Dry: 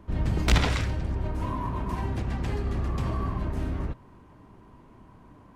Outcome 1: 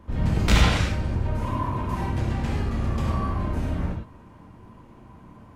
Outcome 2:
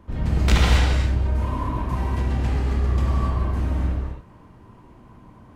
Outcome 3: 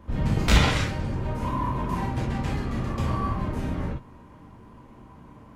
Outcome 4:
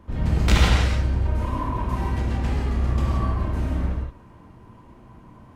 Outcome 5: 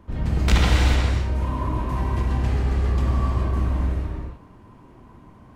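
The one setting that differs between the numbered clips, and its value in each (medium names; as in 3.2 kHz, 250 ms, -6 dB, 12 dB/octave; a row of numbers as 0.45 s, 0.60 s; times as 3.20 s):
gated-style reverb, gate: 130 ms, 300 ms, 80 ms, 200 ms, 460 ms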